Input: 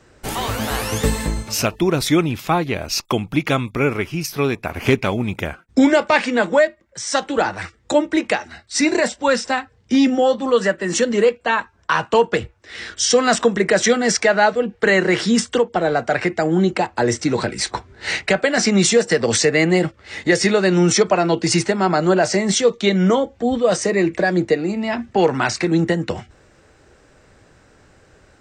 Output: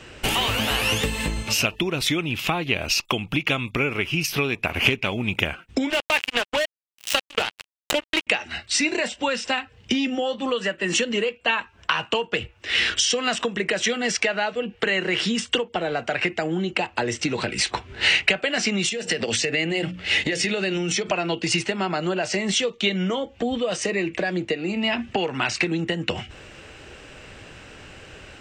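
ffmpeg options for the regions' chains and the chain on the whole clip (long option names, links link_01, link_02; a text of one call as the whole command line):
ffmpeg -i in.wav -filter_complex "[0:a]asettb=1/sr,asplit=3[link_01][link_02][link_03];[link_01]atrim=end=5.904[link_04];[link_02]atrim=start=5.9:end=8.27,asetpts=PTS-STARTPTS,afade=type=in:duration=0.004:curve=qsin,afade=type=out:start_time=2.366:duration=0.004:curve=qsin,equalizer=frequency=97:width=0.44:gain=-10,acrusher=bits=2:mix=0:aa=0.5[link_05];[link_03]atrim=start=8.266[link_06];[link_04][link_05]acrossfade=duration=0.004:curve1=hsin:curve2=qsin[link_07];[link_07][link_06]acrossfade=duration=0.004:curve1=qsin:curve2=hsin,asettb=1/sr,asplit=3[link_08][link_09][link_10];[link_08]atrim=end=18.894[link_11];[link_09]atrim=start=18.89:end=21.12,asetpts=PTS-STARTPTS,afade=type=in:duration=0.004:curve=qsin,afade=type=out:start_time=2.226:duration=0.004:curve=qsin,equalizer=frequency=1100:width_type=o:width=0.58:gain=-6,bandreject=frequency=60:width_type=h:width=6,bandreject=frequency=120:width_type=h:width=6,bandreject=frequency=180:width_type=h:width=6,bandreject=frequency=240:width_type=h:width=6,bandreject=frequency=300:width_type=h:width=6,acompressor=threshold=-23dB:ratio=5:attack=3.2:release=140:knee=1:detection=peak[link_12];[link_10]atrim=start=21.116[link_13];[link_11][link_12]acrossfade=duration=0.004:curve1=hsin:curve2=qsin[link_14];[link_14][link_13]acrossfade=duration=0.004:curve1=qsin:curve2=hsin,acompressor=threshold=-29dB:ratio=10,equalizer=frequency=2800:width_type=o:width=0.63:gain=14,volume=6.5dB" out.wav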